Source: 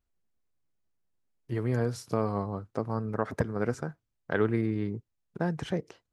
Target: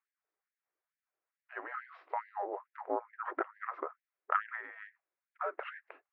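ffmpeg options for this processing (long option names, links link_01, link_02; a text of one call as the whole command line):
ffmpeg -i in.wav -af "highpass=frequency=260:width_type=q:width=0.5412,highpass=frequency=260:width_type=q:width=1.307,lowpass=frequency=2500:width_type=q:width=0.5176,lowpass=frequency=2500:width_type=q:width=0.7071,lowpass=frequency=2500:width_type=q:width=1.932,afreqshift=-280,bandreject=frequency=890:width=19,afftfilt=real='re*gte(b*sr/1024,280*pow(1600/280,0.5+0.5*sin(2*PI*2.3*pts/sr)))':imag='im*gte(b*sr/1024,280*pow(1600/280,0.5+0.5*sin(2*PI*2.3*pts/sr)))':win_size=1024:overlap=0.75,volume=5dB" out.wav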